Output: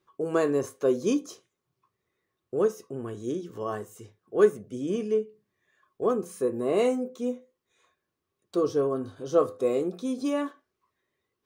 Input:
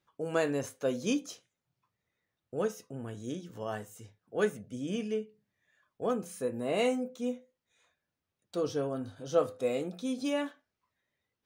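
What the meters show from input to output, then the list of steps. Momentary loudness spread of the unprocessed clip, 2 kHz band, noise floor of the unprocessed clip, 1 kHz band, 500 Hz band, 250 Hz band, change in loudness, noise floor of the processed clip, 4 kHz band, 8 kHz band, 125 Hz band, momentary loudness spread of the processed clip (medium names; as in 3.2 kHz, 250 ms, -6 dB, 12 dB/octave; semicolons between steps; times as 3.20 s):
12 LU, -0.5 dB, under -85 dBFS, +4.5 dB, +6.5 dB, +5.0 dB, +6.0 dB, -83 dBFS, -2.0 dB, +1.0 dB, +2.0 dB, 11 LU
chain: dynamic bell 2.8 kHz, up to -5 dB, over -53 dBFS, Q 1.1; small resonant body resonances 380/1100 Hz, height 13 dB, ringing for 40 ms; trim +1.5 dB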